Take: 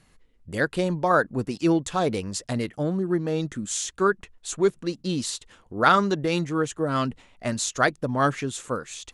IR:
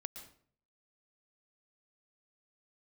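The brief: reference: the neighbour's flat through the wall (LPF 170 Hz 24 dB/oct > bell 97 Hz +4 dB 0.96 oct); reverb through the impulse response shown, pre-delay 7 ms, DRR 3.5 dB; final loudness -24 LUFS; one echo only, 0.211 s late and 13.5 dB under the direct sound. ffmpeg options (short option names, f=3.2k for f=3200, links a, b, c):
-filter_complex "[0:a]aecho=1:1:211:0.211,asplit=2[a][b];[1:a]atrim=start_sample=2205,adelay=7[c];[b][c]afir=irnorm=-1:irlink=0,volume=-0.5dB[d];[a][d]amix=inputs=2:normalize=0,lowpass=f=170:w=0.5412,lowpass=f=170:w=1.3066,equalizer=f=97:t=o:w=0.96:g=4,volume=8dB"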